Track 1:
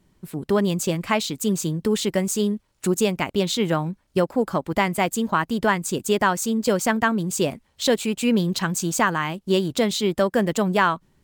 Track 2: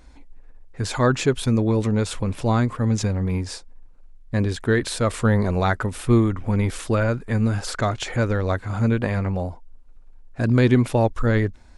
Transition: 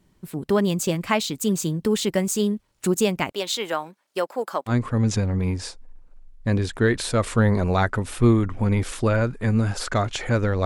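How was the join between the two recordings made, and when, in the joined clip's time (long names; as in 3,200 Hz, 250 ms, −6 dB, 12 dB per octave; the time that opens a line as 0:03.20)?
track 1
0:03.32–0:04.74: high-pass filter 530 Hz 12 dB per octave
0:04.70: continue with track 2 from 0:02.57, crossfade 0.08 s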